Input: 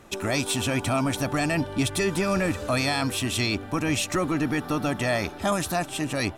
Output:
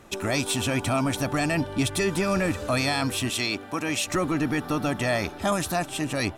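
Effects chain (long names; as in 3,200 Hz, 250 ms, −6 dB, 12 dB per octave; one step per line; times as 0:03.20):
0:03.29–0:04.07: high-pass filter 330 Hz 6 dB per octave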